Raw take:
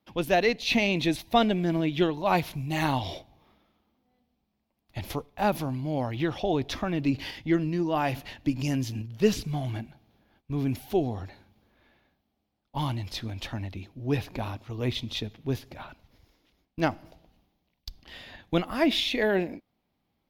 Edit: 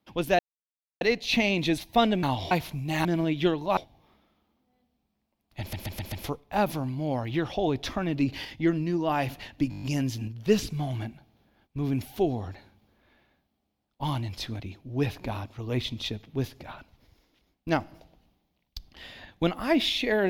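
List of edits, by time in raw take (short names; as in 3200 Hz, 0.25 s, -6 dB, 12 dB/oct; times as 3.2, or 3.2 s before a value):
0.39 insert silence 0.62 s
1.61–2.33 swap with 2.87–3.15
4.98 stutter 0.13 s, 5 plays
8.56 stutter 0.02 s, 7 plays
13.34–13.71 cut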